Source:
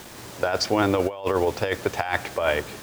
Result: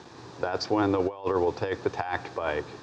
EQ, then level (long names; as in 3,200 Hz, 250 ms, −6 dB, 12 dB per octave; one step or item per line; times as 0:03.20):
high-frequency loss of the air 160 metres
loudspeaker in its box 110–9,400 Hz, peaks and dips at 210 Hz −9 dB, 600 Hz −9 dB, 1,400 Hz −5 dB, 2,100 Hz −10 dB, 3,000 Hz −9 dB, 8,400 Hz −4 dB
0.0 dB